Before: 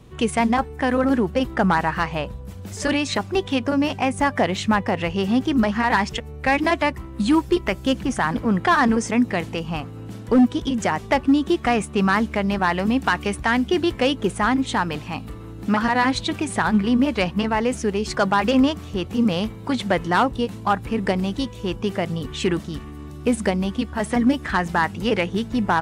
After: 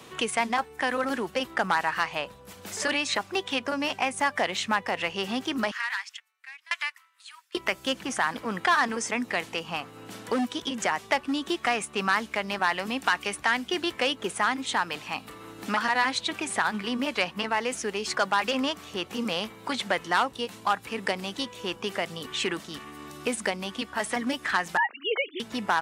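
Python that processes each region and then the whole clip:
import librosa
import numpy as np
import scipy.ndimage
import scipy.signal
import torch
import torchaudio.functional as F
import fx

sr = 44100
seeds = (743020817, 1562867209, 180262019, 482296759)

y = fx.chain(x, sr, fx.highpass(hz=1300.0, slope=24),
    fx.tremolo_decay(direction='decaying', hz=1.0, depth_db=34), at=(5.71, 7.55))
y = fx.chain(y, sr, fx.sine_speech(),
    fx.highpass(hz=430.0, slope=12), at=(24.77, 25.4))
y = fx.highpass(y, sr, hz=1200.0, slope=6)
y = fx.band_squash(y, sr, depth_pct=40)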